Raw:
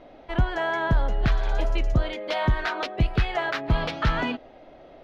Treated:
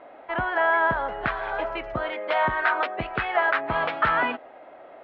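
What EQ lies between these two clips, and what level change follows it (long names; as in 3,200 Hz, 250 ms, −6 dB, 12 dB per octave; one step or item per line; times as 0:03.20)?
resonant band-pass 1,100 Hz, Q 0.54
high-frequency loss of the air 220 metres
parametric band 1,500 Hz +7.5 dB 2.5 octaves
+1.5 dB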